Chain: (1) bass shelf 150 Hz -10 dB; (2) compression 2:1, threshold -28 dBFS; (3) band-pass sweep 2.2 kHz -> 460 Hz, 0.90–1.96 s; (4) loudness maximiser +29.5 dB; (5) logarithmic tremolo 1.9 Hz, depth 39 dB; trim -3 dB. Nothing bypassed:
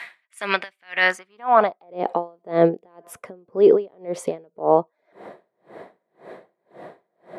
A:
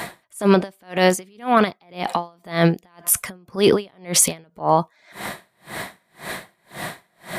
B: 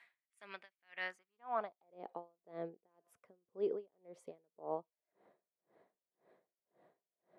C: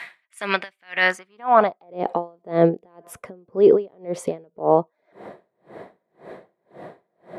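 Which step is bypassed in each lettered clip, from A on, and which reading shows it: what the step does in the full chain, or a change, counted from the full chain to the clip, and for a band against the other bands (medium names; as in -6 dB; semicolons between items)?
3, 125 Hz band +11.0 dB; 4, crest factor change +2.5 dB; 1, 125 Hz band +3.5 dB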